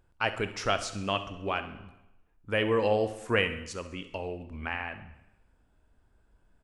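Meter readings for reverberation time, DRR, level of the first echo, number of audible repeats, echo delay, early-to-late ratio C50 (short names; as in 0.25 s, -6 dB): 0.95 s, 9.5 dB, -16.0 dB, 4, 67 ms, 11.0 dB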